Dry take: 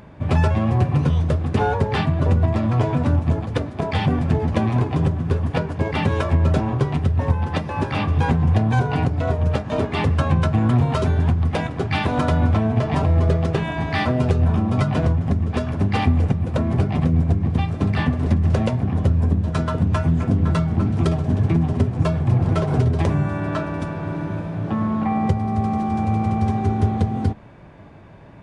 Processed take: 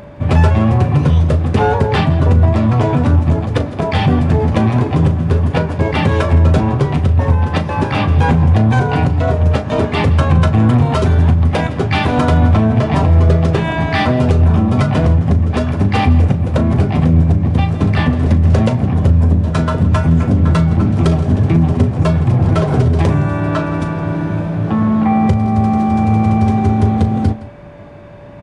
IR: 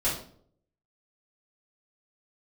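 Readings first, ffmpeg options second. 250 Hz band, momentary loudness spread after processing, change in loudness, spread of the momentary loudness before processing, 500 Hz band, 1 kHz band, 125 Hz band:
+7.0 dB, 5 LU, +7.0 dB, 5 LU, +6.5 dB, +6.5 dB, +7.0 dB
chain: -filter_complex "[0:a]acontrast=83,aeval=exprs='val(0)+0.0158*sin(2*PI*580*n/s)':c=same,asplit=2[a][b];[b]adelay=37,volume=-13dB[c];[a][c]amix=inputs=2:normalize=0,asplit=2[d][e];[e]aecho=0:1:165:0.126[f];[d][f]amix=inputs=2:normalize=0"

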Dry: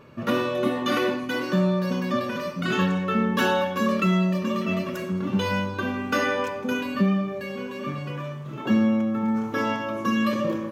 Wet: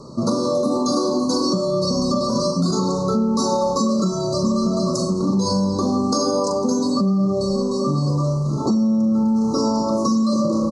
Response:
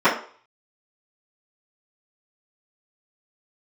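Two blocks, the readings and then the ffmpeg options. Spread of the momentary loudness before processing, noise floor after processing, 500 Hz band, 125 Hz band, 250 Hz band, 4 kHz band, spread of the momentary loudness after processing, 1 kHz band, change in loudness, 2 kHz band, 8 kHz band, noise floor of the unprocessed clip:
9 LU, -23 dBFS, +6.0 dB, +5.5 dB, +5.5 dB, +6.0 dB, 3 LU, +3.5 dB, +5.0 dB, under -25 dB, +15.0 dB, -34 dBFS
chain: -filter_complex "[0:a]asuperstop=centerf=2300:order=20:qfactor=0.8,equalizer=f=92:t=o:w=0.36:g=-12,asplit=6[a][b][c][d][e][f];[b]adelay=94,afreqshift=-34,volume=-22.5dB[g];[c]adelay=188,afreqshift=-68,volume=-26.8dB[h];[d]adelay=282,afreqshift=-102,volume=-31.1dB[i];[e]adelay=376,afreqshift=-136,volume=-35.4dB[j];[f]adelay=470,afreqshift=-170,volume=-39.7dB[k];[a][g][h][i][j][k]amix=inputs=6:normalize=0,acrossover=split=470|5900[l][m][n];[l]acontrast=79[o];[m]crystalizer=i=6:c=0[p];[o][p][n]amix=inputs=3:normalize=0,asplit=2[q][r];[r]adelay=41,volume=-8dB[s];[q][s]amix=inputs=2:normalize=0,alimiter=limit=-15dB:level=0:latency=1:release=66,highshelf=f=5.1k:g=8,bandreject=f=61.32:t=h:w=4,bandreject=f=122.64:t=h:w=4,bandreject=f=183.96:t=h:w=4,bandreject=f=245.28:t=h:w=4,bandreject=f=306.6:t=h:w=4,bandreject=f=367.92:t=h:w=4,bandreject=f=429.24:t=h:w=4,bandreject=f=490.56:t=h:w=4,bandreject=f=551.88:t=h:w=4,bandreject=f=613.2:t=h:w=4,bandreject=f=674.52:t=h:w=4,bandreject=f=735.84:t=h:w=4,bandreject=f=797.16:t=h:w=4,bandreject=f=858.48:t=h:w=4,bandreject=f=919.8:t=h:w=4,bandreject=f=981.12:t=h:w=4,bandreject=f=1.04244k:t=h:w=4,bandreject=f=1.10376k:t=h:w=4,bandreject=f=1.16508k:t=h:w=4,bandreject=f=1.2264k:t=h:w=4,bandreject=f=1.28772k:t=h:w=4,bandreject=f=1.34904k:t=h:w=4,bandreject=f=1.41036k:t=h:w=4,bandreject=f=1.47168k:t=h:w=4,bandreject=f=1.533k:t=h:w=4,bandreject=f=1.59432k:t=h:w=4,bandreject=f=1.65564k:t=h:w=4,bandreject=f=1.71696k:t=h:w=4,bandreject=f=1.77828k:t=h:w=4,bandreject=f=1.8396k:t=h:w=4,bandreject=f=1.90092k:t=h:w=4,bandreject=f=1.96224k:t=h:w=4,bandreject=f=2.02356k:t=h:w=4,bandreject=f=2.08488k:t=h:w=4,bandreject=f=2.1462k:t=h:w=4,bandreject=f=2.20752k:t=h:w=4,aresample=22050,aresample=44100,acompressor=threshold=-22dB:ratio=6,volume=6.5dB"

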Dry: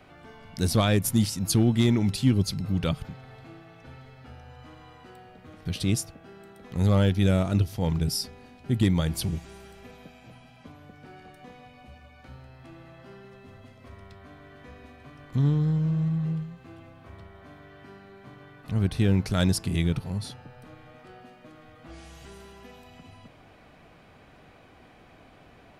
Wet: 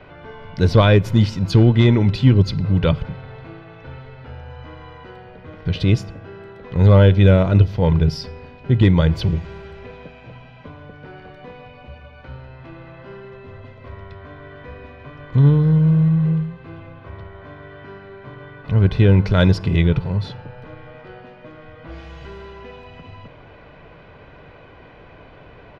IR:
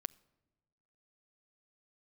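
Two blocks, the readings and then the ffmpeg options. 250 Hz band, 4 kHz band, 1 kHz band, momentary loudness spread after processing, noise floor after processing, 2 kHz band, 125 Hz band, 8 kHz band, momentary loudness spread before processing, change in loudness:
+7.0 dB, +4.0 dB, +8.5 dB, 16 LU, -44 dBFS, +9.5 dB, +10.5 dB, under -10 dB, 14 LU, +9.5 dB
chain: -filter_complex "[0:a]equalizer=f=10k:w=0.52:g=-10.5,aecho=1:1:2:0.41,asplit=2[a][b];[1:a]atrim=start_sample=2205,lowpass=4.4k[c];[b][c]afir=irnorm=-1:irlink=0,volume=17.5dB[d];[a][d]amix=inputs=2:normalize=0,volume=-7dB"

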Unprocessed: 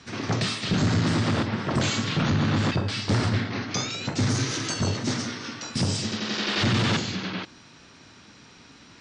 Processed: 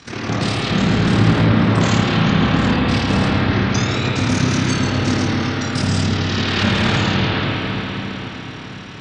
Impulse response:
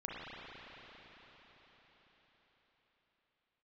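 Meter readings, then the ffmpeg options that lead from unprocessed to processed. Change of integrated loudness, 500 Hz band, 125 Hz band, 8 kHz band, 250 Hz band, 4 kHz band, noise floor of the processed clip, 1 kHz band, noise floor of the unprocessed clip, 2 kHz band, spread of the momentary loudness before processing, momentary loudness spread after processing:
+8.0 dB, +9.0 dB, +8.5 dB, +2.5 dB, +10.0 dB, +6.0 dB, -32 dBFS, +9.5 dB, -51 dBFS, +9.0 dB, 7 LU, 10 LU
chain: -filter_complex "[0:a]asplit=2[a][b];[b]acompressor=threshold=-34dB:ratio=6,volume=1dB[c];[a][c]amix=inputs=2:normalize=0,tremolo=f=37:d=0.667[d];[1:a]atrim=start_sample=2205[e];[d][e]afir=irnorm=-1:irlink=0,volume=7dB"

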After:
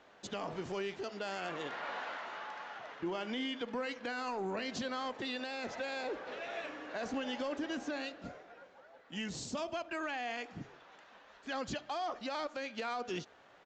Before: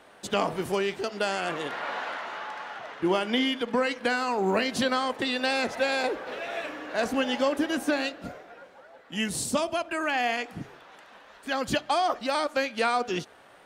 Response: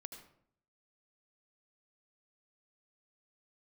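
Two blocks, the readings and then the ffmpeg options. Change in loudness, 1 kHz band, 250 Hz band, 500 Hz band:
-11.5 dB, -11.5 dB, -11.0 dB, -11.5 dB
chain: -af "alimiter=limit=-20.5dB:level=0:latency=1:release=55,aresample=16000,asoftclip=type=tanh:threshold=-19.5dB,aresample=44100,volume=-7.5dB"

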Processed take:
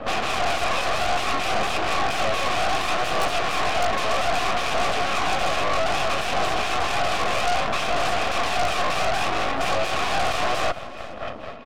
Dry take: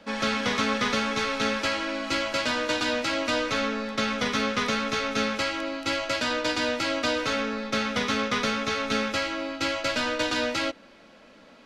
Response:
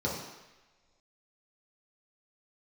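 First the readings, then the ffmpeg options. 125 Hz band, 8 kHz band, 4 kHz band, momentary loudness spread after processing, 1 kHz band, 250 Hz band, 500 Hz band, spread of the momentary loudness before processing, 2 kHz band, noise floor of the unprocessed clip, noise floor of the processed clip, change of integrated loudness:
+5.5 dB, +3.0 dB, +1.5 dB, 1 LU, +8.0 dB, -6.0 dB, +3.5 dB, 3 LU, +2.0 dB, -52 dBFS, -34 dBFS, +3.0 dB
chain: -filter_complex "[0:a]lowshelf=f=450:g=9,bandreject=f=98.18:t=h:w=4,bandreject=f=196.36:t=h:w=4,bandreject=f=294.54:t=h:w=4,asplit=2[a][b];[b]alimiter=level_in=1dB:limit=-24dB:level=0:latency=1:release=171,volume=-1dB,volume=1dB[c];[a][c]amix=inputs=2:normalize=0,acrossover=split=480[d][e];[d]aeval=exprs='val(0)*(1-0.7/2+0.7/2*cos(2*PI*4.4*n/s))':c=same[f];[e]aeval=exprs='val(0)*(1-0.7/2-0.7/2*cos(2*PI*4.4*n/s))':c=same[g];[f][g]amix=inputs=2:normalize=0,aeval=exprs='0.237*sin(PI/2*6.31*val(0)/0.237)':c=same,asplit=3[h][i][j];[h]bandpass=f=730:t=q:w=8,volume=0dB[k];[i]bandpass=f=1.09k:t=q:w=8,volume=-6dB[l];[j]bandpass=f=2.44k:t=q:w=8,volume=-9dB[m];[k][l][m]amix=inputs=3:normalize=0,aphaser=in_gain=1:out_gain=1:delay=2:decay=0.32:speed=0.62:type=triangular,aeval=exprs='clip(val(0),-1,0.0158)':c=same,aeval=exprs='0.188*(cos(1*acos(clip(val(0)/0.188,-1,1)))-cos(1*PI/2))+0.0596*(cos(8*acos(clip(val(0)/0.188,-1,1)))-cos(8*PI/2))':c=same,aecho=1:1:428|856:0.126|0.0302"

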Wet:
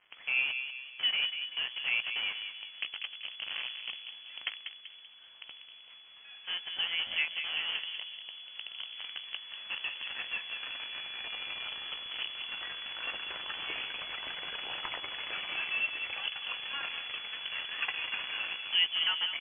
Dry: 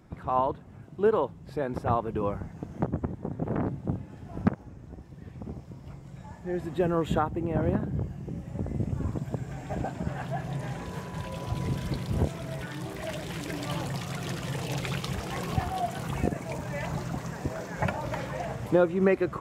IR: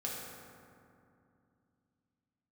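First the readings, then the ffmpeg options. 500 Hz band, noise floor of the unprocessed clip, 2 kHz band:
-25.5 dB, -47 dBFS, +6.5 dB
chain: -filter_complex "[0:a]highpass=480,asplit=2[a][b];[b]acompressor=threshold=-38dB:ratio=10,volume=0.5dB[c];[a][c]amix=inputs=2:normalize=0,acrusher=bits=6:dc=4:mix=0:aa=0.000001,asplit=2[d][e];[e]adelay=17,volume=-12.5dB[f];[d][f]amix=inputs=2:normalize=0,asplit=2[g][h];[h]adelay=192,lowpass=f=1.1k:p=1,volume=-5.5dB,asplit=2[i][j];[j]adelay=192,lowpass=f=1.1k:p=1,volume=0.53,asplit=2[k][l];[l]adelay=192,lowpass=f=1.1k:p=1,volume=0.53,asplit=2[m][n];[n]adelay=192,lowpass=f=1.1k:p=1,volume=0.53,asplit=2[o][p];[p]adelay=192,lowpass=f=1.1k:p=1,volume=0.53,asplit=2[q][r];[r]adelay=192,lowpass=f=1.1k:p=1,volume=0.53,asplit=2[s][t];[t]adelay=192,lowpass=f=1.1k:p=1,volume=0.53[u];[g][i][k][m][o][q][s][u]amix=inputs=8:normalize=0,lowpass=f=2.9k:t=q:w=0.5098,lowpass=f=2.9k:t=q:w=0.6013,lowpass=f=2.9k:t=q:w=0.9,lowpass=f=2.9k:t=q:w=2.563,afreqshift=-3400,volume=-5.5dB"

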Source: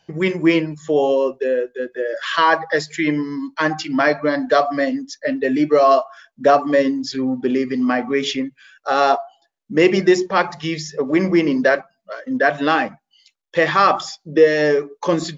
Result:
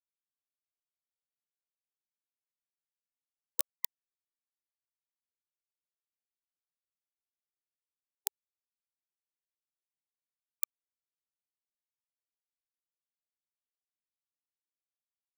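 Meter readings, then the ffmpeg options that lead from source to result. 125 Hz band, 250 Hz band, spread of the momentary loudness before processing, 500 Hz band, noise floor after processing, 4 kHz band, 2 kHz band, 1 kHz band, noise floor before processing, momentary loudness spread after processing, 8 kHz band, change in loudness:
under -40 dB, under -40 dB, 10 LU, under -40 dB, under -85 dBFS, -29.0 dB, under -40 dB, under -40 dB, -70 dBFS, 4 LU, n/a, -19.5 dB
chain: -filter_complex "[0:a]acrossover=split=270|3000[a][b][c];[b]acompressor=threshold=-35dB:ratio=1.5[d];[a][d][c]amix=inputs=3:normalize=0,asoftclip=type=tanh:threshold=-15.5dB,aecho=1:1:239:0.473,acompressor=threshold=-30dB:ratio=16,bass=f=250:g=-14,treble=f=4k:g=9,bandreject=f=60:t=h:w=6,bandreject=f=120:t=h:w=6,bandreject=f=180:t=h:w=6,bandreject=f=240:t=h:w=6,bandreject=f=300:t=h:w=6,bandreject=f=360:t=h:w=6,bandreject=f=420:t=h:w=6,bandreject=f=480:t=h:w=6,bandreject=f=540:t=h:w=6,afftfilt=real='re*lt(hypot(re,im),0.0631)':imag='im*lt(hypot(re,im),0.0631)':win_size=1024:overlap=0.75,highpass=87,acrusher=bits=3:mix=0:aa=0.000001,aemphasis=mode=production:type=75fm,afftfilt=real='re*gte(hypot(re,im),0.00141)':imag='im*gte(hypot(re,im),0.00141)':win_size=1024:overlap=0.75,afftfilt=real='re*(1-between(b*sr/1024,570*pow(1700/570,0.5+0.5*sin(2*PI*1.9*pts/sr))/1.41,570*pow(1700/570,0.5+0.5*sin(2*PI*1.9*pts/sr))*1.41))':imag='im*(1-between(b*sr/1024,570*pow(1700/570,0.5+0.5*sin(2*PI*1.9*pts/sr))/1.41,570*pow(1700/570,0.5+0.5*sin(2*PI*1.9*pts/sr))*1.41))':win_size=1024:overlap=0.75"

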